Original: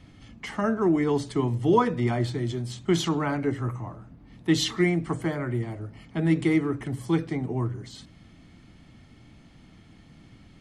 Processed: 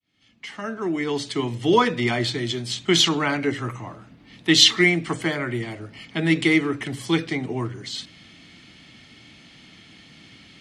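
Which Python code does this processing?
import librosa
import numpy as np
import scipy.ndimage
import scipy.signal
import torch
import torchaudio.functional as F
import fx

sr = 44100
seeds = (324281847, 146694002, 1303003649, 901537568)

y = fx.fade_in_head(x, sr, length_s=1.82)
y = fx.weighting(y, sr, curve='D')
y = y * librosa.db_to_amplitude(3.5)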